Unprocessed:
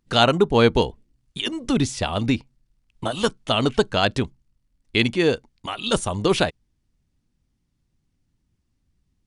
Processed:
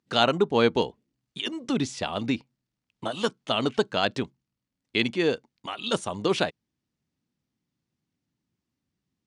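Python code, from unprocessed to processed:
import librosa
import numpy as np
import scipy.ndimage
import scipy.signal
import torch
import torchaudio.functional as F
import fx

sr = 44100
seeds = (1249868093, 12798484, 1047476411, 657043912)

y = fx.bandpass_edges(x, sr, low_hz=160.0, high_hz=7400.0)
y = F.gain(torch.from_numpy(y), -4.5).numpy()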